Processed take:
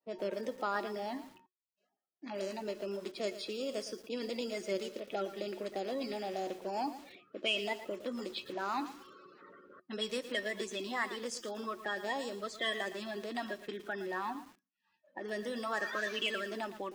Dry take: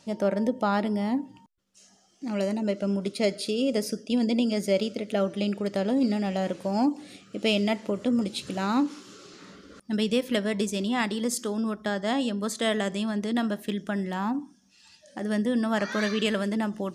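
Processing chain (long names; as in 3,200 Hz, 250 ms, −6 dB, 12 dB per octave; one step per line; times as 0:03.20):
spectral magnitudes quantised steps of 30 dB
downward expander −49 dBFS
low-pass that shuts in the quiet parts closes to 1,200 Hz, open at −20.5 dBFS
meter weighting curve A
in parallel at +0.5 dB: downward compressor, threshold −38 dBFS, peak gain reduction 16.5 dB
on the sum: tuned comb filter 370 Hz, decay 0.16 s, harmonics odd, mix 70%
feedback echo at a low word length 114 ms, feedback 35%, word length 8 bits, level −12 dB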